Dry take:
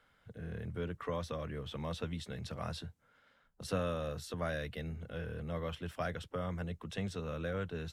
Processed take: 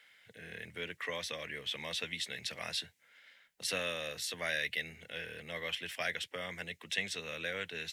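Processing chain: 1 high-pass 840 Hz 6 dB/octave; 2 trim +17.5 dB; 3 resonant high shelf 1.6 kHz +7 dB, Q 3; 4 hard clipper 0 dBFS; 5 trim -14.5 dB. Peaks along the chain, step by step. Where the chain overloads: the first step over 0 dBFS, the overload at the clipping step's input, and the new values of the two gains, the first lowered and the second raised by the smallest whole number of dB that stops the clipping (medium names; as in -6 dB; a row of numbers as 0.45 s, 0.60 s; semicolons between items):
-27.0 dBFS, -9.5 dBFS, -3.5 dBFS, -3.5 dBFS, -18.0 dBFS; nothing clips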